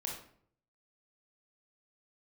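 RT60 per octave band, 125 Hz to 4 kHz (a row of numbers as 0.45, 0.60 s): 0.85, 0.70, 0.65, 0.55, 0.50, 0.40 s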